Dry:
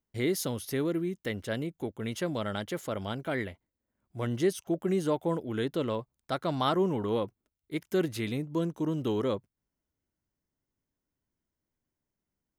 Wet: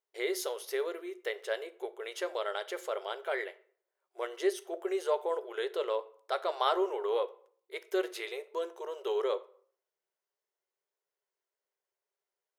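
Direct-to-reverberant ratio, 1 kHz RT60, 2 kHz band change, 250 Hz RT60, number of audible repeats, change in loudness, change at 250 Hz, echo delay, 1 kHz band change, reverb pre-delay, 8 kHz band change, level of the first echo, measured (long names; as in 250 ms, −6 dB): 12.0 dB, 0.55 s, 0.0 dB, 0.90 s, no echo audible, −3.0 dB, −12.5 dB, no echo audible, 0.0 dB, 5 ms, −3.5 dB, no echo audible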